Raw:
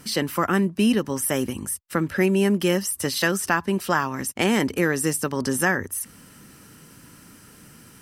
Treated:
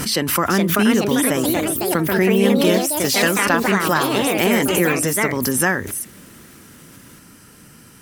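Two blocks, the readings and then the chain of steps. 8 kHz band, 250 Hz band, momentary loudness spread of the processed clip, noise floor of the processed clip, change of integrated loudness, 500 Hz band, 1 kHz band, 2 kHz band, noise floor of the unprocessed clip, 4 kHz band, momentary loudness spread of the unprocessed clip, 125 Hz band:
+5.5 dB, +5.0 dB, 4 LU, −46 dBFS, +5.5 dB, +6.0 dB, +5.5 dB, +5.5 dB, −49 dBFS, +7.0 dB, 7 LU, +3.5 dB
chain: delay with pitch and tempo change per echo 446 ms, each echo +3 semitones, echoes 3
background raised ahead of every attack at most 44 dB per second
level +2.5 dB

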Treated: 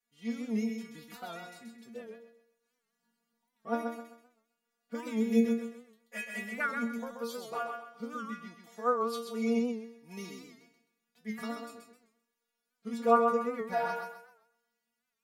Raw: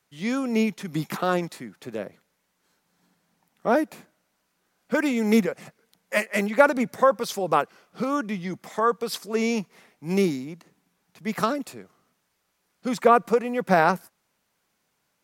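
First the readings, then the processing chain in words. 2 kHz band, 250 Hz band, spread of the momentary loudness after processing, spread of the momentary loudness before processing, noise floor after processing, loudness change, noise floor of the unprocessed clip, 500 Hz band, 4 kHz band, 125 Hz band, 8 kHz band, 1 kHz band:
−11.0 dB, −7.5 dB, 20 LU, 16 LU, −85 dBFS, −9.0 dB, −74 dBFS, −10.0 dB, −12.0 dB, below −10 dB, −12.5 dB, −9.5 dB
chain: notch filter 1,000 Hz, Q 13
stiff-string resonator 230 Hz, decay 0.36 s, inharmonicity 0.002
on a send: feedback echo with a high-pass in the loop 130 ms, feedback 33%, high-pass 160 Hz, level −5 dB
on the sum: wow of a warped record 78 rpm, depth 100 cents

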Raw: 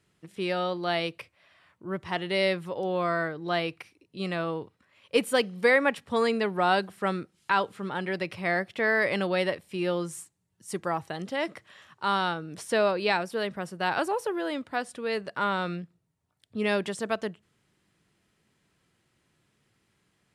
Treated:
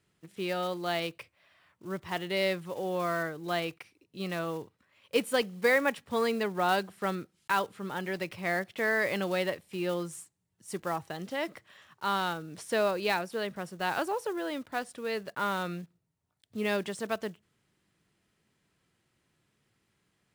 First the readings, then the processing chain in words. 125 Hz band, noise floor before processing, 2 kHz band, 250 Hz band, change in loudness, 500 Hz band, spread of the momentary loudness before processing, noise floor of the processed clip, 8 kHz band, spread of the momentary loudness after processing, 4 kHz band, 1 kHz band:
−3.5 dB, −73 dBFS, −3.5 dB, −3.5 dB, −3.5 dB, −3.5 dB, 11 LU, −77 dBFS, −1.0 dB, 12 LU, −3.5 dB, −3.5 dB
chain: one scale factor per block 5 bits
level −3.5 dB

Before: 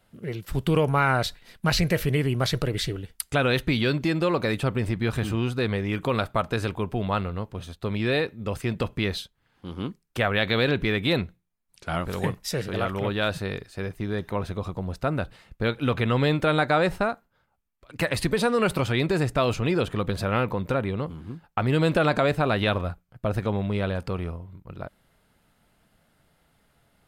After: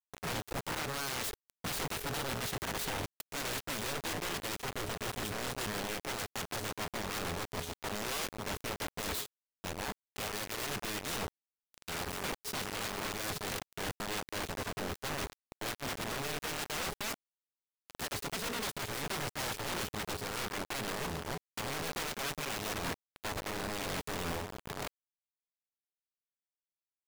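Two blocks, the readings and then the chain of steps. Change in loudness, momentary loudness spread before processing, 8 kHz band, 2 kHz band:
−11.5 dB, 12 LU, +2.0 dB, −9.5 dB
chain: reversed playback
downward compressor 16 to 1, threshold −31 dBFS, peak gain reduction 15.5 dB
reversed playback
steady tone 420 Hz −42 dBFS
wrap-around overflow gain 30.5 dB
bit-depth reduction 6 bits, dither none
level −2.5 dB

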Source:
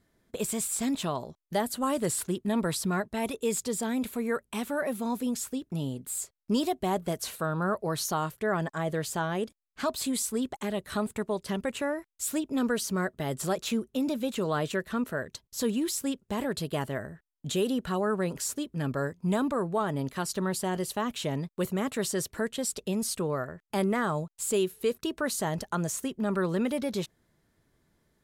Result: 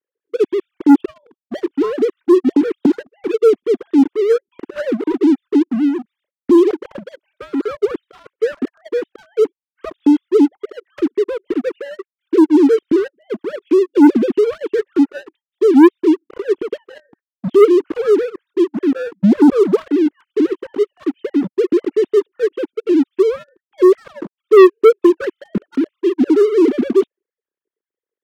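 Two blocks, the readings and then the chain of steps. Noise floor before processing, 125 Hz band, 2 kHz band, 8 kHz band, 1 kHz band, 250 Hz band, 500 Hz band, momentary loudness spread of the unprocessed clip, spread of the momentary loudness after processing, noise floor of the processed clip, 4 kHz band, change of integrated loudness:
−75 dBFS, −0.5 dB, +5.0 dB, below −10 dB, +6.5 dB, +16.5 dB, +17.0 dB, 5 LU, 15 LU, below −85 dBFS, can't be measured, +15.5 dB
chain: three sine waves on the formant tracks
low shelf with overshoot 520 Hz +11.5 dB, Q 3
leveller curve on the samples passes 3
level −8 dB

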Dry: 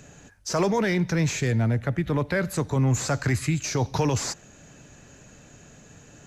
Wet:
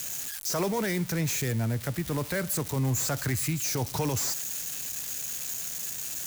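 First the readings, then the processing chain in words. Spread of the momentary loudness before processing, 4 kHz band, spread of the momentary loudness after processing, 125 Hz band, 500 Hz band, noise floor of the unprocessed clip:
5 LU, 0.0 dB, 4 LU, −5.5 dB, −5.5 dB, −51 dBFS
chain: spike at every zero crossing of −20 dBFS
level −5.5 dB

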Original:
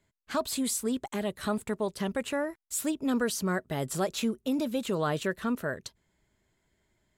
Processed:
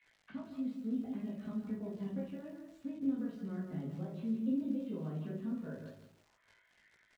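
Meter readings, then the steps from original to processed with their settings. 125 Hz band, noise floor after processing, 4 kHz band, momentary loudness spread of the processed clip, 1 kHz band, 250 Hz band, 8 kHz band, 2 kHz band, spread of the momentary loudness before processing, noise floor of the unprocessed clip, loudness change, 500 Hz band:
−5.0 dB, −72 dBFS, below −25 dB, 12 LU, −21.5 dB, −5.0 dB, below −35 dB, −22.5 dB, 4 LU, −78 dBFS, −8.5 dB, −16.0 dB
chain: parametric band 2,800 Hz +12.5 dB 2.1 octaves
single-tap delay 156 ms −11.5 dB
downward compressor 5 to 1, threshold −35 dBFS, peak gain reduction 13.5 dB
double-tracking delay 50 ms −7.5 dB
rectangular room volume 130 cubic metres, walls furnished, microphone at 1.9 metres
envelope filter 210–2,200 Hz, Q 3, down, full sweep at −40 dBFS
surface crackle 80 per second −50 dBFS
high-frequency loss of the air 72 metres
multi-voice chorus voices 4, 0.63 Hz, delay 19 ms, depth 1 ms
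feedback echo at a low word length 167 ms, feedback 35%, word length 11 bits, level −12 dB
level +4.5 dB

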